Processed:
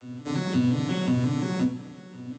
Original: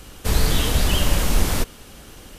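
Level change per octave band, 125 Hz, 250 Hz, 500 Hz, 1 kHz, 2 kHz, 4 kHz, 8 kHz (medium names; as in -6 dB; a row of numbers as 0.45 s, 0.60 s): -3.5 dB, +5.5 dB, -5.0 dB, -7.5 dB, -9.0 dB, -13.5 dB, -18.5 dB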